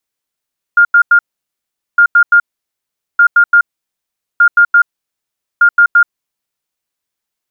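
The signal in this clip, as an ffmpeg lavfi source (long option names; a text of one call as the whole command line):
ffmpeg -f lavfi -i "aevalsrc='0.708*sin(2*PI*1410*t)*clip(min(mod(mod(t,1.21),0.17),0.08-mod(mod(t,1.21),0.17))/0.005,0,1)*lt(mod(t,1.21),0.51)':duration=6.05:sample_rate=44100" out.wav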